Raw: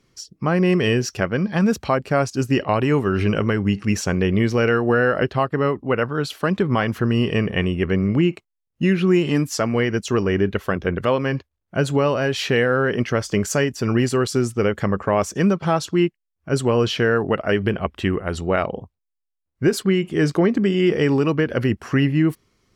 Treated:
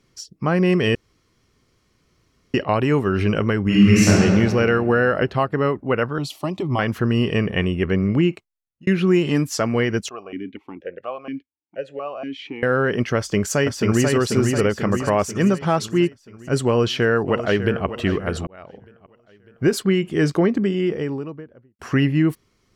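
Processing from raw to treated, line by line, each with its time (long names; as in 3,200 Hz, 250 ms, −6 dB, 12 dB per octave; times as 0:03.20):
0:00.95–0:02.54: fill with room tone
0:03.64–0:04.09: thrown reverb, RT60 2.2 s, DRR −9 dB
0:06.18–0:06.79: phaser with its sweep stopped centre 310 Hz, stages 8
0:08.29–0:08.87: fade out linear
0:10.09–0:12.63: formant filter that steps through the vowels 4.2 Hz
0:13.17–0:14.11: delay throw 490 ms, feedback 55%, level −3 dB
0:16.67–0:17.86: delay throw 600 ms, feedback 35%, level −11.5 dB
0:18.47–0:19.70: fade in
0:20.24–0:21.79: fade out and dull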